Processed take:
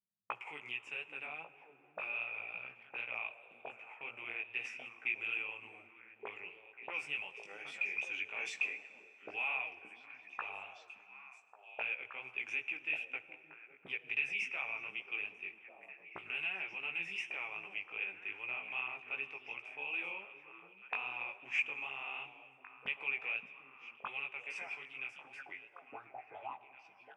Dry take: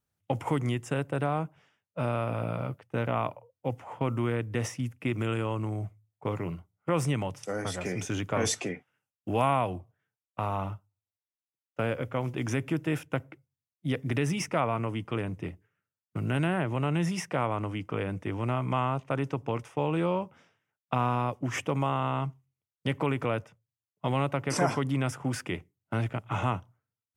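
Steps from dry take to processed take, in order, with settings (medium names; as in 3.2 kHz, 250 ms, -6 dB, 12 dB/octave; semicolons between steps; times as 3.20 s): fade out at the end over 4.51 s; gate -53 dBFS, range -11 dB; graphic EQ with 31 bands 400 Hz +11 dB, 800 Hz +9 dB, 2.5 kHz +4 dB, 8 kHz +5 dB; in parallel at -3 dB: peak limiter -19 dBFS, peak gain reduction 10 dB; on the sum: auto-wah 200–2500 Hz, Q 11, up, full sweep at -27.5 dBFS; chorus 2.6 Hz, delay 15 ms, depth 5.4 ms; on a send: repeats whose band climbs or falls 572 ms, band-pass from 210 Hz, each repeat 1.4 oct, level -4 dB; on the sum: plate-style reverb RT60 3.6 s, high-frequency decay 0.6×, DRR 14.5 dB; trim +5 dB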